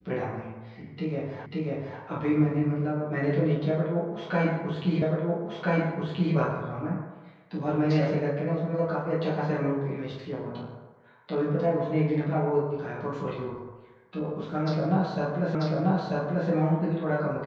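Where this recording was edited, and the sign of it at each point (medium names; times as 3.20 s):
1.46 s: repeat of the last 0.54 s
5.02 s: repeat of the last 1.33 s
15.55 s: repeat of the last 0.94 s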